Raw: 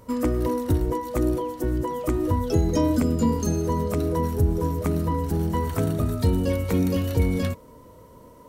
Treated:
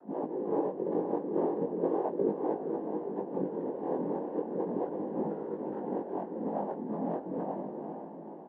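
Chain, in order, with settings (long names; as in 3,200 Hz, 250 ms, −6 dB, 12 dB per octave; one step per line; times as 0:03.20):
single-tap delay 396 ms −14 dB
compressor whose output falls as the input rises −26 dBFS, ratio −0.5
brick-wall band-pass 250–900 Hz
cochlear-implant simulation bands 8
feedback delay with all-pass diffusion 485 ms, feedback 44%, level −7 dB
chorus effect 0.37 Hz, delay 18.5 ms, depth 5.3 ms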